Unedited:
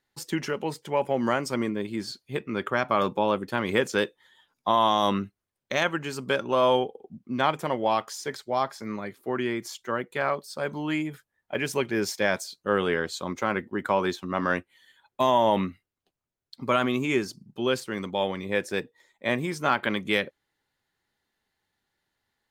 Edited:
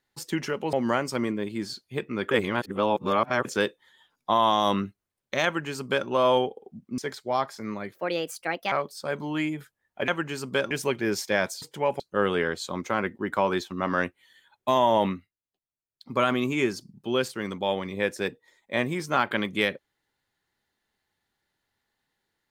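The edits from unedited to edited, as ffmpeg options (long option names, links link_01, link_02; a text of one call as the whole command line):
ffmpeg -i in.wav -filter_complex "[0:a]asplit=13[link_01][link_02][link_03][link_04][link_05][link_06][link_07][link_08][link_09][link_10][link_11][link_12][link_13];[link_01]atrim=end=0.732[link_14];[link_02]atrim=start=1.108:end=2.692[link_15];[link_03]atrim=start=2.688:end=3.832,asetpts=PTS-STARTPTS,areverse[link_16];[link_04]atrim=start=3.828:end=7.362[link_17];[link_05]atrim=start=8.198:end=9.164[link_18];[link_06]atrim=start=9.16:end=10.25,asetpts=PTS-STARTPTS,asetrate=61740,aresample=44100[link_19];[link_07]atrim=start=10.246:end=11.612[link_20];[link_08]atrim=start=5.828:end=6.462[link_21];[link_09]atrim=start=11.608:end=12.522[link_22];[link_10]atrim=start=0.728:end=1.112[link_23];[link_11]atrim=start=12.518:end=15.82,asetpts=PTS-STARTPTS,afade=type=out:start_time=3.052:duration=0.25:silence=0.223872[link_24];[link_12]atrim=start=15.82:end=16.42,asetpts=PTS-STARTPTS,volume=-13dB[link_25];[link_13]atrim=start=16.42,asetpts=PTS-STARTPTS,afade=type=in:duration=0.25:silence=0.223872[link_26];[link_14][link_15]acrossfade=duration=0.004:curve1=hsin:curve2=hsin[link_27];[link_27][link_16]acrossfade=duration=0.004:curve1=hsin:curve2=hsin[link_28];[link_28][link_17]acrossfade=duration=0.004:curve1=hsin:curve2=hsin[link_29];[link_29][link_18]acrossfade=duration=0.004:curve1=hsin:curve2=hsin[link_30];[link_30][link_19]acrossfade=duration=0.004:curve1=hsin:curve2=hsin[link_31];[link_31][link_20]acrossfade=duration=0.004:curve1=hsin:curve2=hsin[link_32];[link_32][link_21]acrossfade=duration=0.004:curve1=hsin:curve2=hsin[link_33];[link_33][link_22]acrossfade=duration=0.004:curve1=hsin:curve2=hsin[link_34];[link_34][link_23]acrossfade=duration=0.004:curve1=hsin:curve2=hsin[link_35];[link_24][link_25][link_26]concat=n=3:v=0:a=1[link_36];[link_35][link_36]acrossfade=duration=0.004:curve1=hsin:curve2=hsin" out.wav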